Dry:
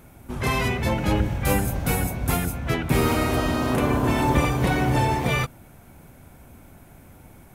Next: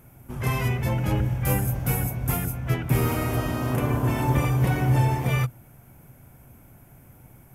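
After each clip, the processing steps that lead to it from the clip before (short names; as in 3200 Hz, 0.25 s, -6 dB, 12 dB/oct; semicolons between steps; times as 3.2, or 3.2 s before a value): thirty-one-band EQ 125 Hz +11 dB, 4000 Hz -8 dB, 12500 Hz +9 dB; gain -5 dB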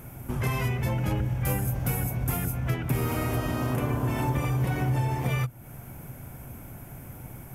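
compressor 3:1, threshold -36 dBFS, peak gain reduction 14.5 dB; gain +8 dB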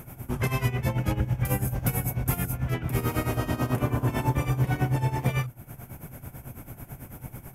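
tremolo 9.1 Hz, depth 79%; gain +4 dB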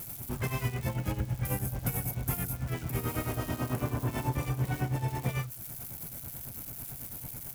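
switching spikes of -29 dBFS; gain -6 dB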